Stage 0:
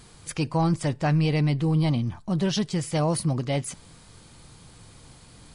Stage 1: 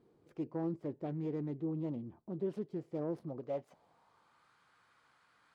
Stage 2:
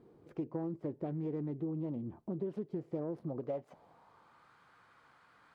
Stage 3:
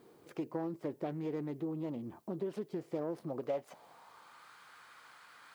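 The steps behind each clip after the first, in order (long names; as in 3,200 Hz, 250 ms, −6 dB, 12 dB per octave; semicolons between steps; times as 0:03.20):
phase distortion by the signal itself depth 0.17 ms; band-pass filter sweep 370 Hz → 1,400 Hz, 0:03.13–0:04.51; level −6 dB
high-shelf EQ 2,700 Hz −9.5 dB; downward compressor 6 to 1, threshold −42 dBFS, peak gain reduction 10.5 dB; level +7.5 dB
spectral tilt +3.5 dB per octave; level +5.5 dB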